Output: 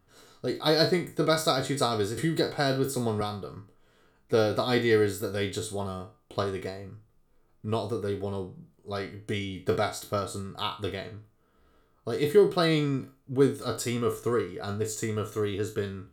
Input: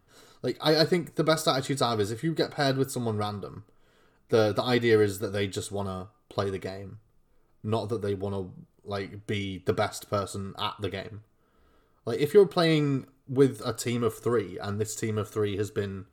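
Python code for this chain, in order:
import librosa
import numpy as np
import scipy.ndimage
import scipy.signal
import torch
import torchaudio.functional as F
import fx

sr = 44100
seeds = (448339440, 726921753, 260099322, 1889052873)

y = fx.spec_trails(x, sr, decay_s=0.31)
y = fx.band_squash(y, sr, depth_pct=70, at=(2.17, 3.21))
y = F.gain(torch.from_numpy(y), -1.5).numpy()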